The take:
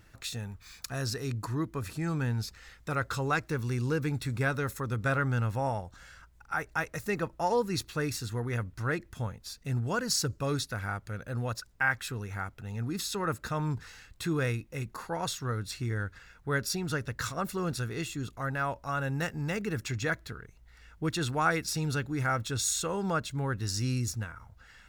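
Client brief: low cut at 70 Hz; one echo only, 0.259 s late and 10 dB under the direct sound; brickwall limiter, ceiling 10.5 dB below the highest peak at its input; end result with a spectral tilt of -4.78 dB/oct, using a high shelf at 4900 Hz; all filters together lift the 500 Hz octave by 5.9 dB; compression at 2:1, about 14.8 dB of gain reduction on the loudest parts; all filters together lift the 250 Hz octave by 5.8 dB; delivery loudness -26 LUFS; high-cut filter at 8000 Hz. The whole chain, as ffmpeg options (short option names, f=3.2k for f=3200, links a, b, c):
-af "highpass=70,lowpass=8k,equalizer=f=250:t=o:g=6.5,equalizer=f=500:t=o:g=5,highshelf=f=4.9k:g=8.5,acompressor=threshold=-46dB:ratio=2,alimiter=level_in=9.5dB:limit=-24dB:level=0:latency=1,volume=-9.5dB,aecho=1:1:259:0.316,volume=17dB"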